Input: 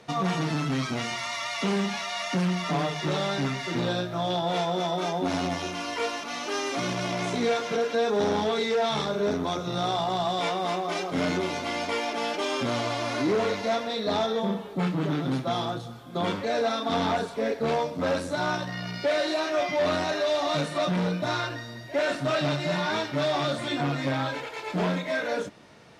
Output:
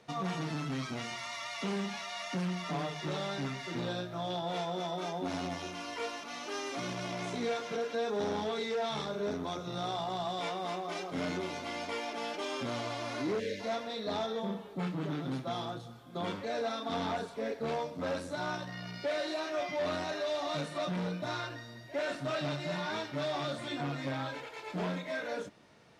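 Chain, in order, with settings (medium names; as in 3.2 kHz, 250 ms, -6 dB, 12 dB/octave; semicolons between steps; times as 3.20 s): time-frequency box 13.39–13.60 s, 610–1500 Hz -29 dB; trim -8.5 dB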